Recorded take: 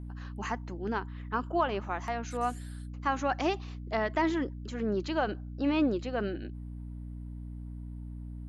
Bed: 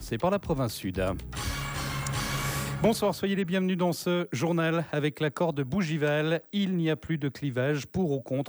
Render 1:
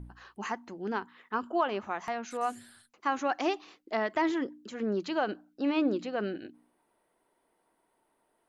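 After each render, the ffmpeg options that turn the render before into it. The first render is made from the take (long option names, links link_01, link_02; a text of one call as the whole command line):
ffmpeg -i in.wav -af "bandreject=frequency=60:width_type=h:width=4,bandreject=frequency=120:width_type=h:width=4,bandreject=frequency=180:width_type=h:width=4,bandreject=frequency=240:width_type=h:width=4,bandreject=frequency=300:width_type=h:width=4" out.wav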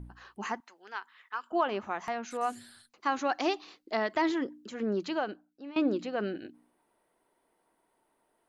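ffmpeg -i in.wav -filter_complex "[0:a]asettb=1/sr,asplit=3[link_01][link_02][link_03];[link_01]atrim=end=0.604[link_04];[link_02]atrim=start=0.6:end=1.52,asetpts=PTS-STARTPTS,afade=type=in:duration=0.004:curve=qsin,afade=type=out:start_time=0.916:duration=0.004:curve=qsin,highpass=1200[link_05];[link_03]atrim=start=1.516[link_06];[link_04][link_05]acrossfade=duration=0.004:curve1=hsin:curve2=qsin[link_07];[link_07][link_06]acrossfade=duration=0.004:curve1=qsin:curve2=hsin,asettb=1/sr,asplit=3[link_08][link_09][link_10];[link_08]atrim=end=2.524[link_11];[link_09]atrim=start=2.52:end=4.33,asetpts=PTS-STARTPTS,afade=type=in:duration=0.004:curve=qsin,afade=type=out:start_time=1.806:duration=0.004:curve=qsin,equalizer=frequency=4300:width_type=o:width=0.57:gain=6[link_12];[link_10]atrim=start=4.326[link_13];[link_11][link_12]acrossfade=duration=0.004:curve1=hsin:curve2=qsin[link_14];[link_14][link_13]acrossfade=duration=0.004:curve1=qsin:curve2=hsin,asplit=2[link_15][link_16];[link_15]atrim=end=5.76,asetpts=PTS-STARTPTS,afade=type=out:start_time=5.11:duration=0.65:curve=qua:silence=0.16788[link_17];[link_16]atrim=start=5.76,asetpts=PTS-STARTPTS,afade=type=in:duration=0.004:curve=hsin:silence=0.16788[link_18];[link_17][link_18]concat=n=2:v=0:a=1" out.wav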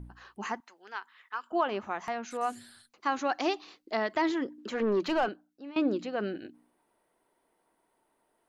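ffmpeg -i in.wav -filter_complex "[0:a]asettb=1/sr,asplit=3[link_01][link_02][link_03];[link_01]atrim=end=4.584[link_04];[link_02]atrim=start=4.58:end=5.29,asetpts=PTS-STARTPTS,afade=type=in:duration=0.004:curve=qsin,afade=type=out:start_time=0.706:duration=0.004:curve=qsin,asplit=2[link_05][link_06];[link_06]highpass=frequency=720:poles=1,volume=20dB,asoftclip=type=tanh:threshold=-18dB[link_07];[link_05][link_07]amix=inputs=2:normalize=0,lowpass=frequency=1500:poles=1,volume=-6dB[link_08];[link_03]atrim=start=5.286[link_09];[link_04][link_08]acrossfade=duration=0.004:curve1=hsin:curve2=qsin[link_10];[link_10][link_09]acrossfade=duration=0.004:curve1=qsin:curve2=hsin" out.wav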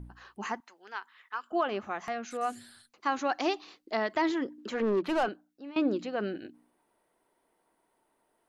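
ffmpeg -i in.wav -filter_complex "[0:a]asettb=1/sr,asplit=3[link_01][link_02][link_03];[link_01]atrim=end=1.424[link_04];[link_02]atrim=start=1.42:end=2.59,asetpts=PTS-STARTPTS,afade=type=in:duration=0.004:curve=qsin,afade=type=out:start_time=1.166:duration=0.004:curve=qsin,bandreject=frequency=940:width=7.6[link_05];[link_03]atrim=start=2.586[link_06];[link_04][link_05]acrossfade=duration=0.004:curve1=hsin:curve2=qsin[link_07];[link_07][link_06]acrossfade=duration=0.004:curve1=qsin:curve2=hsin,asettb=1/sr,asplit=3[link_08][link_09][link_10];[link_08]atrim=end=4.824[link_11];[link_09]atrim=start=4.82:end=5.23,asetpts=PTS-STARTPTS,afade=type=in:duration=0.004:curve=qsin,afade=type=out:start_time=0.406:duration=0.004:curve=qsin,adynamicsmooth=sensitivity=5.5:basefreq=1500[link_12];[link_10]atrim=start=5.226[link_13];[link_11][link_12]acrossfade=duration=0.004:curve1=hsin:curve2=qsin[link_14];[link_14][link_13]acrossfade=duration=0.004:curve1=qsin:curve2=hsin" out.wav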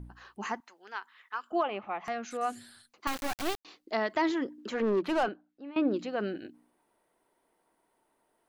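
ffmpeg -i in.wav -filter_complex "[0:a]asplit=3[link_01][link_02][link_03];[link_01]afade=type=out:start_time=1.62:duration=0.02[link_04];[link_02]highpass=160,equalizer=frequency=240:width_type=q:width=4:gain=-7,equalizer=frequency=400:width_type=q:width=4:gain=-5,equalizer=frequency=820:width_type=q:width=4:gain=4,equalizer=frequency=1600:width_type=q:width=4:gain=-9,equalizer=frequency=2400:width_type=q:width=4:gain=4,lowpass=frequency=3200:width=0.5412,lowpass=frequency=3200:width=1.3066,afade=type=in:start_time=1.62:duration=0.02,afade=type=out:start_time=2.04:duration=0.02[link_05];[link_03]afade=type=in:start_time=2.04:duration=0.02[link_06];[link_04][link_05][link_06]amix=inputs=3:normalize=0,asettb=1/sr,asplit=3[link_07][link_08][link_09];[link_07]atrim=end=3.074[link_10];[link_08]atrim=start=3.07:end=3.65,asetpts=PTS-STARTPTS,afade=type=in:duration=0.004:curve=qsin,afade=type=out:start_time=0.576:duration=0.004:curve=qsin,acrusher=bits=3:dc=4:mix=0:aa=0.000001[link_11];[link_09]atrim=start=3.646[link_12];[link_10][link_11]acrossfade=duration=0.004:curve1=hsin:curve2=qsin[link_13];[link_13][link_12]acrossfade=duration=0.004:curve1=qsin:curve2=hsin,asettb=1/sr,asplit=3[link_14][link_15][link_16];[link_14]atrim=end=5.284[link_17];[link_15]atrim=start=5.28:end=5.94,asetpts=PTS-STARTPTS,afade=type=in:duration=0.004:curve=qsin,afade=type=out:start_time=0.656:duration=0.004:curve=qsin,lowpass=3000[link_18];[link_16]atrim=start=5.936[link_19];[link_17][link_18]acrossfade=duration=0.004:curve1=hsin:curve2=qsin[link_20];[link_20][link_19]acrossfade=duration=0.004:curve1=qsin:curve2=hsin" out.wav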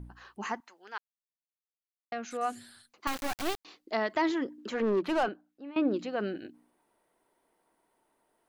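ffmpeg -i in.wav -filter_complex "[0:a]asplit=3[link_01][link_02][link_03];[link_01]atrim=end=0.98,asetpts=PTS-STARTPTS,afade=type=out:start_time=0.976:duration=0.004:curve=hsin[link_04];[link_02]atrim=start=0.98:end=2.12,asetpts=PTS-STARTPTS,volume=0[link_05];[link_03]atrim=start=2.12,asetpts=PTS-STARTPTS,afade=type=in:duration=0.004:curve=hsin[link_06];[link_04][link_05][link_06]concat=n=3:v=0:a=1" out.wav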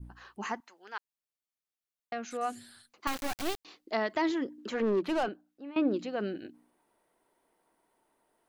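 ffmpeg -i in.wav -af "adynamicequalizer=threshold=0.00631:dfrequency=1200:dqfactor=0.72:tfrequency=1200:tqfactor=0.72:attack=5:release=100:ratio=0.375:range=3:mode=cutabove:tftype=bell" out.wav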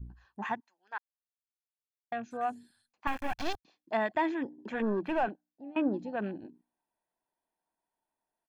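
ffmpeg -i in.wav -af "afwtdn=0.00708,aecho=1:1:1.2:0.44" out.wav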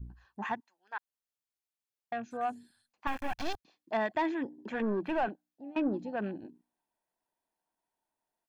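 ffmpeg -i in.wav -af "asoftclip=type=tanh:threshold=-21dB" out.wav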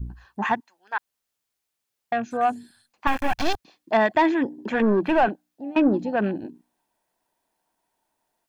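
ffmpeg -i in.wav -af "volume=11.5dB" out.wav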